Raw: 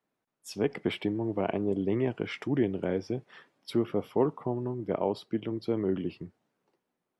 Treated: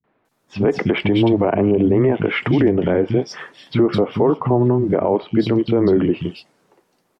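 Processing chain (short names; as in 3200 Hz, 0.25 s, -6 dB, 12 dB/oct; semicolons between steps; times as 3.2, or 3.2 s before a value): three bands offset in time lows, mids, highs 40/250 ms, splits 200/3000 Hz; treble ducked by the level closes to 1900 Hz, closed at -25 dBFS; maximiser +25 dB; gain -6 dB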